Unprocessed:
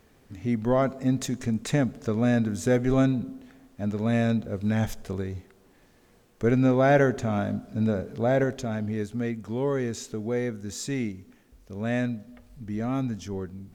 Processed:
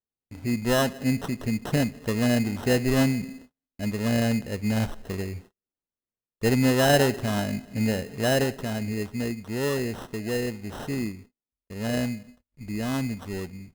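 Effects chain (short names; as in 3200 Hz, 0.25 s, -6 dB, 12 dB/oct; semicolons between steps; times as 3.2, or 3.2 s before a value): gate -45 dBFS, range -41 dB; sample-rate reducer 2300 Hz, jitter 0%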